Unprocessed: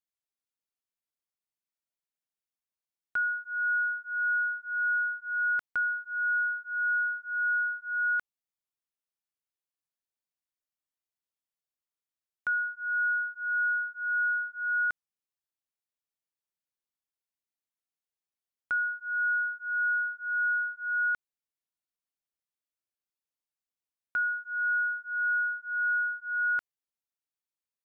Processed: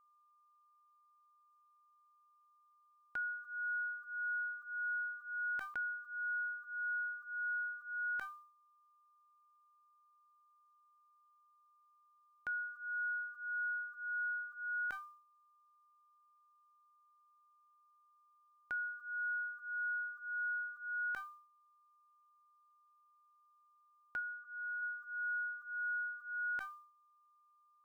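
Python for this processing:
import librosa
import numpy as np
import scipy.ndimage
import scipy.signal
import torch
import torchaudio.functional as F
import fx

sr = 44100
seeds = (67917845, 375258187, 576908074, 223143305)

y = fx.peak_eq(x, sr, hz=1300.0, db=-14.0, octaves=0.27)
y = fx.comb_fb(y, sr, f0_hz=780.0, decay_s=0.17, harmonics='all', damping=0.0, mix_pct=60)
y = y + 10.0 ** (-71.0 / 20.0) * np.sin(2.0 * np.pi * 1200.0 * np.arange(len(y)) / sr)
y = fx.air_absorb(y, sr, metres=490.0, at=(24.19, 24.81), fade=0.02)
y = fx.sustainer(y, sr, db_per_s=94.0)
y = y * librosa.db_to_amplitude(3.0)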